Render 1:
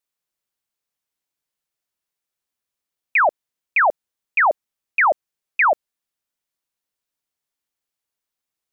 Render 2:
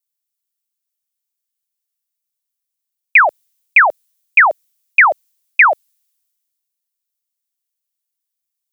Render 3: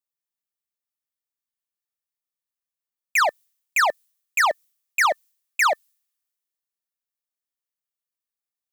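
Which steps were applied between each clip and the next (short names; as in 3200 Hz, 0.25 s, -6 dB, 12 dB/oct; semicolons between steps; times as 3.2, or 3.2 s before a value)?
tilt +4.5 dB/oct; three-band expander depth 40%; gain +3 dB
overloaded stage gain 16 dB; small resonant body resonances 1200/1800 Hz, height 7 dB; mismatched tape noise reduction decoder only; gain -2 dB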